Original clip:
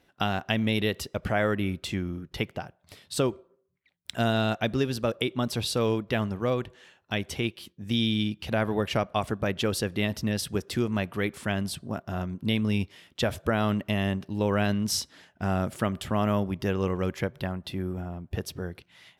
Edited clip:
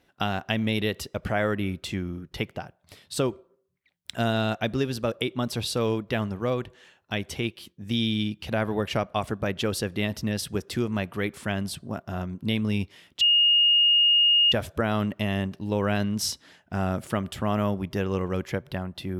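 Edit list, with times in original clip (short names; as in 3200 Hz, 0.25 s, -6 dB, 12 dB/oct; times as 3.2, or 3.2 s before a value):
13.21 add tone 2850 Hz -16 dBFS 1.31 s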